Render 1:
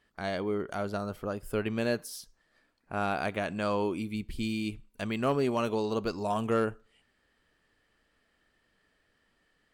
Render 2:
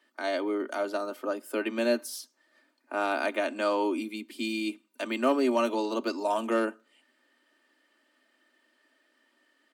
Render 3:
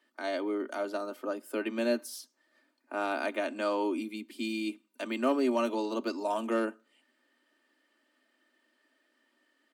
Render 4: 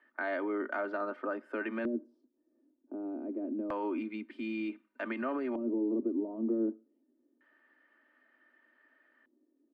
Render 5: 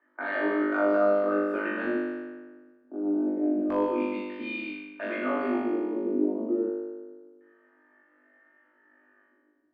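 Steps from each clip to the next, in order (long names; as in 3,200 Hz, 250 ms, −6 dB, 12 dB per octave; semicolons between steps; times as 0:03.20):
Butterworth high-pass 230 Hz 96 dB per octave; comb filter 3.3 ms, depth 60%; level +2 dB
low-shelf EQ 200 Hz +6.5 dB; level −4 dB
brickwall limiter −28 dBFS, peak gain reduction 10.5 dB; auto-filter low-pass square 0.27 Hz 330–1,700 Hz
flutter between parallel walls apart 3.4 metres, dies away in 1.5 s; low-pass that shuts in the quiet parts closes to 1,500 Hz, open at −24.5 dBFS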